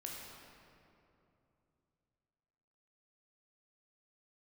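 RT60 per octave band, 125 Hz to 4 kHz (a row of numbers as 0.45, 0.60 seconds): 3.8, 3.4, 3.0, 2.7, 2.1, 1.6 seconds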